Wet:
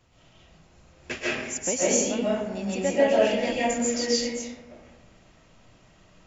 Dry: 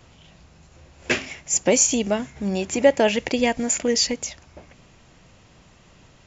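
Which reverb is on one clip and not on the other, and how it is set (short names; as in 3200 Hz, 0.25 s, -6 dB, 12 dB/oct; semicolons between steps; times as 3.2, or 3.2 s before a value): digital reverb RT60 1.1 s, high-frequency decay 0.5×, pre-delay 0.1 s, DRR -8 dB; gain -12 dB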